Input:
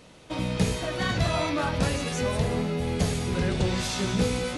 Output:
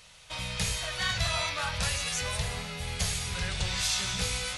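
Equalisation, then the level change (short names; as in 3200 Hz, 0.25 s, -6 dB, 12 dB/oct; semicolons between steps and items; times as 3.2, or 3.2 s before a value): passive tone stack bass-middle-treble 10-0-10; +5.0 dB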